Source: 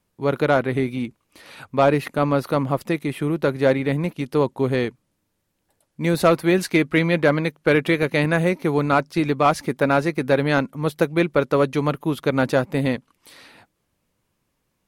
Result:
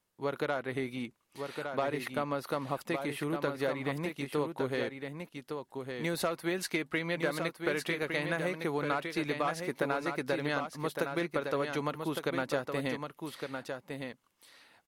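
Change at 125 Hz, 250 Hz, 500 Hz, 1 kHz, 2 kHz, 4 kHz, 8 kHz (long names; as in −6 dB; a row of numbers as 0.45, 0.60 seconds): −16.5, −14.0, −13.0, −12.0, −10.0, −8.0, −7.0 decibels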